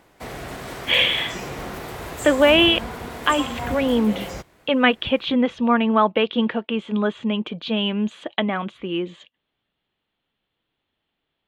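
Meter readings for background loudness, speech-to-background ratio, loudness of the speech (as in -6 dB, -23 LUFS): -32.0 LUFS, 11.5 dB, -20.5 LUFS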